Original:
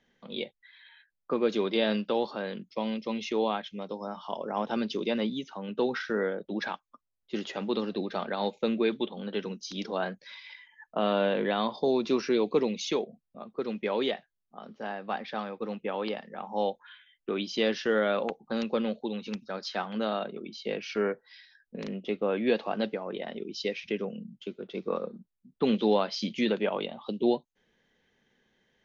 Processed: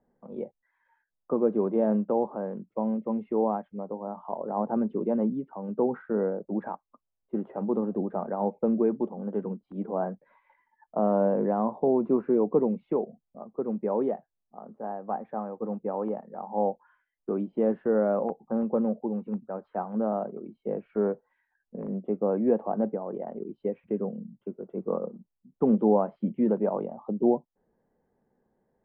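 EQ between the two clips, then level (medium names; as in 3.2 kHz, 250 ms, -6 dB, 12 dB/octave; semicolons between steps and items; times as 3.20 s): four-pole ladder low-pass 1.1 kHz, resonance 30%; distance through air 220 m; dynamic bell 180 Hz, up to +5 dB, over -46 dBFS, Q 1.1; +7.0 dB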